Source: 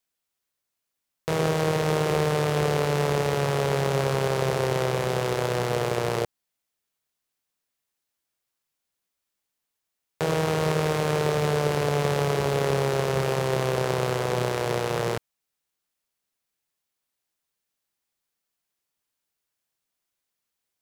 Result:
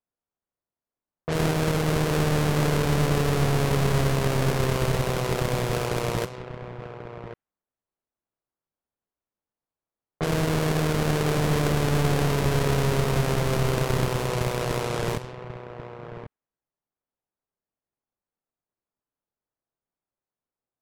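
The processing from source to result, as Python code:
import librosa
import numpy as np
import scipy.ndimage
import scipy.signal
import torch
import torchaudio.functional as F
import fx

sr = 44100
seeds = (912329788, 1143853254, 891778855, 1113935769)

y = fx.halfwave_hold(x, sr)
y = y + 10.0 ** (-11.0 / 20.0) * np.pad(y, (int(1089 * sr / 1000.0), 0))[:len(y)]
y = fx.env_lowpass(y, sr, base_hz=1000.0, full_db=-16.0)
y = F.gain(torch.from_numpy(y), -6.0).numpy()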